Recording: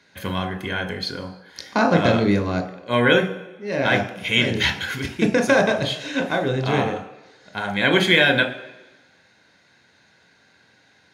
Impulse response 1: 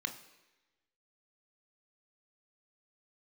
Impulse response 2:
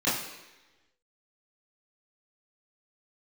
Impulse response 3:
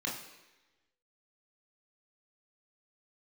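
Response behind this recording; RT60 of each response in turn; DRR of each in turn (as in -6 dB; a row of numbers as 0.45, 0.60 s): 1; 1.1, 1.1, 1.1 s; 6.0, -11.0, -3.0 dB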